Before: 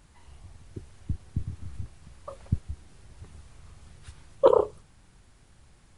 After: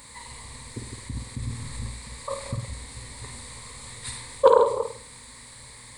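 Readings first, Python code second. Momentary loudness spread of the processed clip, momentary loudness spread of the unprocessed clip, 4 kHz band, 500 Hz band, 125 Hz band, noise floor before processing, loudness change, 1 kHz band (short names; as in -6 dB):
23 LU, 24 LU, +13.5 dB, +3.5 dB, +1.0 dB, -59 dBFS, +1.0 dB, +7.5 dB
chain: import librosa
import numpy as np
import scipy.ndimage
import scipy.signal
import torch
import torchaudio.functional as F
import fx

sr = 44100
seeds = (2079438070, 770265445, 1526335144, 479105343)

p1 = fx.reverse_delay(x, sr, ms=142, wet_db=-8.5)
p2 = fx.tilt_eq(p1, sr, slope=2.5)
p3 = fx.over_compress(p2, sr, threshold_db=-43.0, ratio=-1.0)
p4 = p2 + (p3 * 10.0 ** (-1.0 / 20.0))
p5 = fx.ripple_eq(p4, sr, per_octave=0.98, db=13)
p6 = p5 + fx.room_flutter(p5, sr, wall_m=8.7, rt60_s=0.46, dry=0)
y = fx.doppler_dist(p6, sr, depth_ms=0.12)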